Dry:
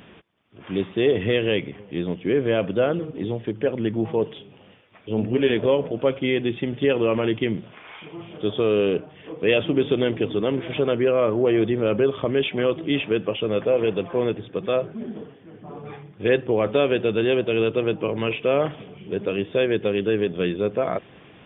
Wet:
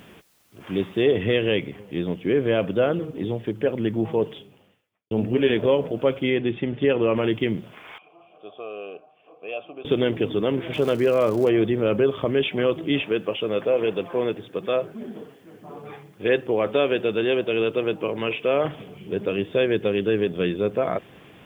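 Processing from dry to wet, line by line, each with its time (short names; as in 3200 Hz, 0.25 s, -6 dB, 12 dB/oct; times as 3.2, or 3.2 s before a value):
1.02 noise floor step -63 dB -69 dB
4.34–5.11 fade out quadratic
6.3–7.16 LPF 3200 Hz
7.98–9.85 vowel filter a
10.72–11.48 crackle 300/s -31 dBFS
13.03–18.65 low shelf 160 Hz -10 dB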